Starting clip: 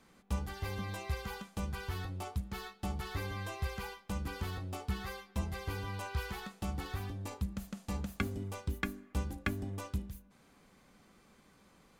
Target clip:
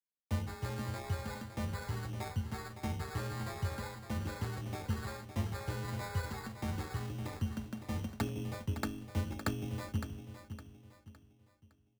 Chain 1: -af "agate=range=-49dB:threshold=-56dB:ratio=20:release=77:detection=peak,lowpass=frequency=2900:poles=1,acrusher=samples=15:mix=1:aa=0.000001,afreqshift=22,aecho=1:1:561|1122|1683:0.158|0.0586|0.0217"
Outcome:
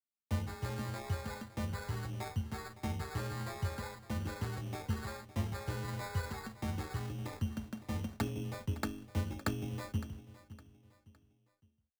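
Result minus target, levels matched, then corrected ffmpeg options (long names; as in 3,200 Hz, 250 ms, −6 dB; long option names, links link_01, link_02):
echo-to-direct −6 dB
-af "agate=range=-49dB:threshold=-56dB:ratio=20:release=77:detection=peak,lowpass=frequency=2900:poles=1,acrusher=samples=15:mix=1:aa=0.000001,afreqshift=22,aecho=1:1:561|1122|1683|2244:0.316|0.117|0.0433|0.016"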